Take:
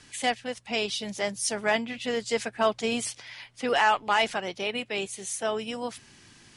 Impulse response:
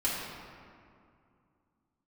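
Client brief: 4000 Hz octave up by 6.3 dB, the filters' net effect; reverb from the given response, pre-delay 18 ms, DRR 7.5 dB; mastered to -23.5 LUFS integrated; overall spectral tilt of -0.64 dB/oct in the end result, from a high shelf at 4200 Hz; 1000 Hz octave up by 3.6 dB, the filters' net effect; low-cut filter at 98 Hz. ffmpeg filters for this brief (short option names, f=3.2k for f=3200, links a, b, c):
-filter_complex "[0:a]highpass=98,equalizer=f=1k:t=o:g=4,equalizer=f=4k:t=o:g=4,highshelf=f=4.2k:g=8.5,asplit=2[a][b];[1:a]atrim=start_sample=2205,adelay=18[c];[b][c]afir=irnorm=-1:irlink=0,volume=-16dB[d];[a][d]amix=inputs=2:normalize=0"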